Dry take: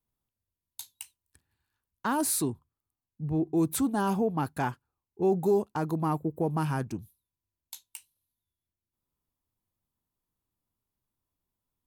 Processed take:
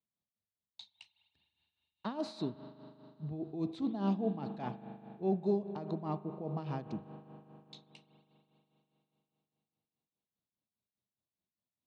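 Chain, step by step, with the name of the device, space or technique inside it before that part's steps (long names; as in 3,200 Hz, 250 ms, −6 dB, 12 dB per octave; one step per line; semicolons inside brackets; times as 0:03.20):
combo amplifier with spring reverb and tremolo (spring reverb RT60 3.7 s, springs 40 ms, chirp 80 ms, DRR 9.5 dB; amplitude tremolo 4.9 Hz, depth 67%; loudspeaker in its box 96–4,600 Hz, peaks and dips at 200 Hz +8 dB, 630 Hz +7 dB, 960 Hz −3 dB, 1,500 Hz −9 dB, 3,900 Hz +9 dB)
level −7.5 dB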